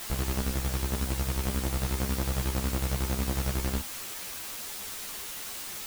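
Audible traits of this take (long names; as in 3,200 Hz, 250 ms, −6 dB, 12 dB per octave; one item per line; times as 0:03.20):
chopped level 11 Hz, depth 60%, duty 45%
a quantiser's noise floor 6 bits, dither triangular
a shimmering, thickened sound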